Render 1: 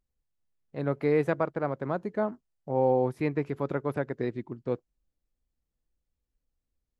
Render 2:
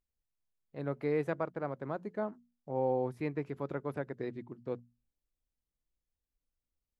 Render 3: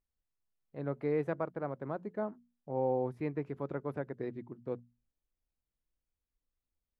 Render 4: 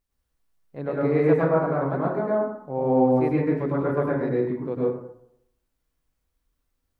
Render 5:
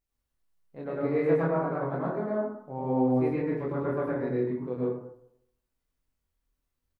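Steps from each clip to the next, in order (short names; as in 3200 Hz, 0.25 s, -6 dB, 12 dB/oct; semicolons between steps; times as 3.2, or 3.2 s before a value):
notches 60/120/180/240 Hz; gain -7 dB
high shelf 2800 Hz -10 dB
plate-style reverb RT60 0.75 s, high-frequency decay 0.45×, pre-delay 90 ms, DRR -6 dB; gain +6.5 dB
doubler 24 ms -3 dB; gain -7 dB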